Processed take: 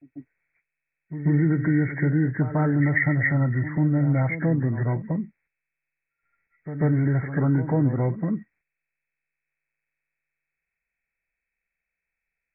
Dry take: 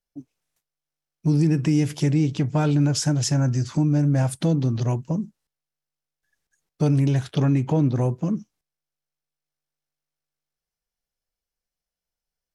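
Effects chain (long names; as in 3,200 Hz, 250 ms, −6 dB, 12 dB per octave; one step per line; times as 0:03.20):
hearing-aid frequency compression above 1,300 Hz 4 to 1
echo ahead of the sound 142 ms −12 dB
level −1.5 dB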